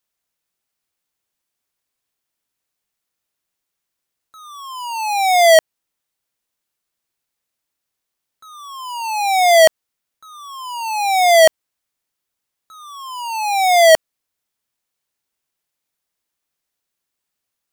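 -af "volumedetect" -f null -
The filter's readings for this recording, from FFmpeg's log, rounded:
mean_volume: -20.7 dB
max_volume: -6.0 dB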